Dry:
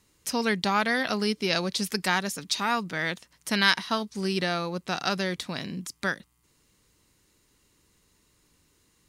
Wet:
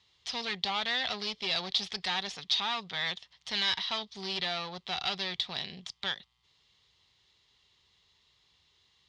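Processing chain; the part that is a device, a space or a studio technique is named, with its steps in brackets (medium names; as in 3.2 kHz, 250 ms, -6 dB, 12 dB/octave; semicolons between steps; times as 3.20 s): peaking EQ 2.5 kHz -4 dB 0.37 oct; scooped metal amplifier (valve stage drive 28 dB, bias 0.5; cabinet simulation 80–4500 Hz, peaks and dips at 260 Hz +7 dB, 380 Hz +9 dB, 760 Hz +7 dB, 1.5 kHz -7 dB, 3.4 kHz +8 dB; amplifier tone stack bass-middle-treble 10-0-10); trim +7.5 dB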